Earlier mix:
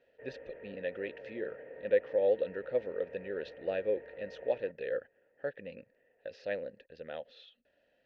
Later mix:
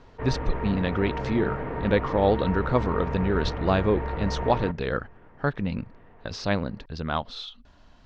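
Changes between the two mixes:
background +6.0 dB; master: remove vowel filter e

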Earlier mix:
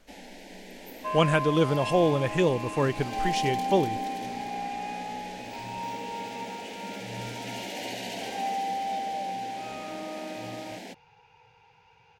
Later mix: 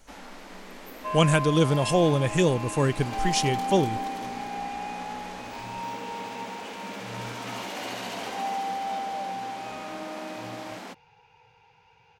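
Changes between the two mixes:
speech: add tone controls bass +5 dB, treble +12 dB; first sound: remove Butterworth band-stop 1200 Hz, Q 1.3

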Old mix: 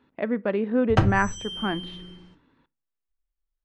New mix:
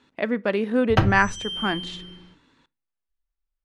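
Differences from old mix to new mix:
background: add air absorption 290 m; master: remove tape spacing loss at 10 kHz 32 dB

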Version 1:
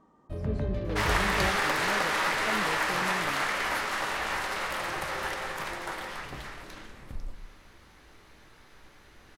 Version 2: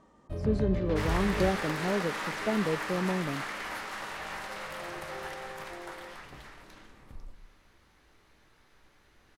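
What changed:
speech +8.0 dB; second sound -8.0 dB

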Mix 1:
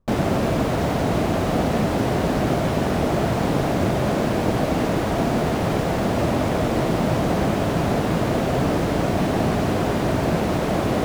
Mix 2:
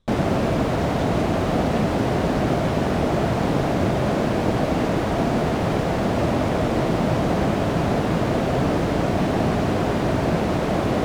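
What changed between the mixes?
speech: remove LPF 1400 Hz 24 dB/oct; master: add high shelf 9600 Hz -10 dB

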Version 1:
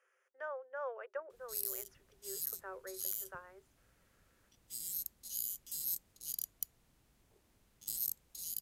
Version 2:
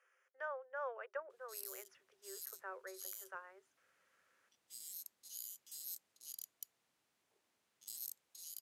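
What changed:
background -6.0 dB; master: add weighting filter A

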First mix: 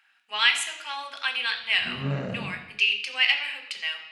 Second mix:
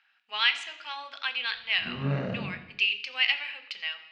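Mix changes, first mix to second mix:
speech: send -7.0 dB; master: add LPF 5200 Hz 24 dB/oct

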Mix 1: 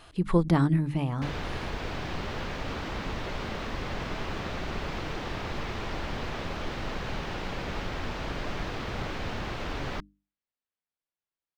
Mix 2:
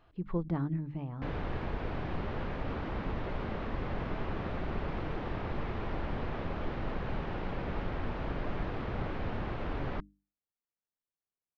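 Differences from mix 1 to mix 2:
speech -9.0 dB; master: add tape spacing loss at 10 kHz 35 dB

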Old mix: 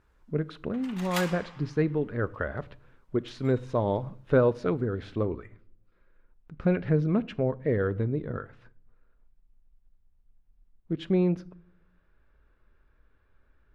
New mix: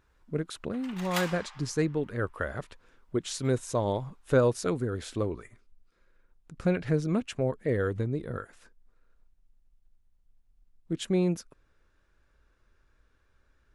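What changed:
speech: remove air absorption 320 m; reverb: off

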